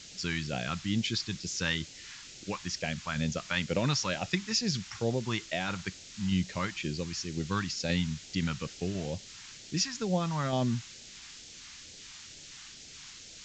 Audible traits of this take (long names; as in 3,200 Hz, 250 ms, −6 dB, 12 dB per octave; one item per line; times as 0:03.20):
tremolo saw down 1.9 Hz, depth 35%
a quantiser's noise floor 8 bits, dither triangular
phaser sweep stages 2, 2.2 Hz, lowest notch 490–1,100 Hz
A-law companding